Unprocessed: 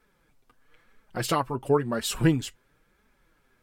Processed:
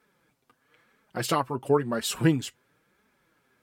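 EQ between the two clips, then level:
high-pass filter 110 Hz 12 dB per octave
0.0 dB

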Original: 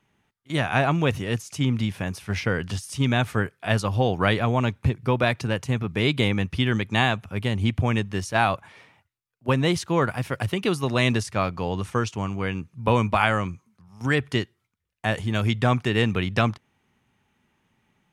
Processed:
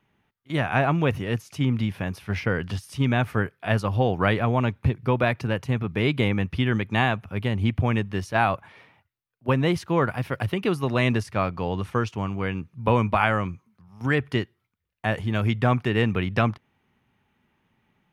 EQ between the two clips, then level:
dynamic equaliser 3,700 Hz, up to −5 dB, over −41 dBFS, Q 2.6
parametric band 7,600 Hz −11 dB 1.1 octaves
0.0 dB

